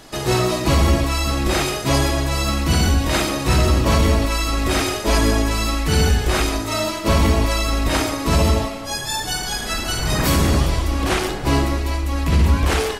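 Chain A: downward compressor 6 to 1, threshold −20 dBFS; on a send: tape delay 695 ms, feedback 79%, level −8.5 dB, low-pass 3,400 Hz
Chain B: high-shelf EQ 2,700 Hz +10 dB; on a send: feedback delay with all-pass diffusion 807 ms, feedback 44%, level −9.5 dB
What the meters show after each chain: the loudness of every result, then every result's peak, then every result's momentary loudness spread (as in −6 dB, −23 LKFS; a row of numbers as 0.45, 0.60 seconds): −24.0, −15.5 LKFS; −10.5, −1.5 dBFS; 2, 3 LU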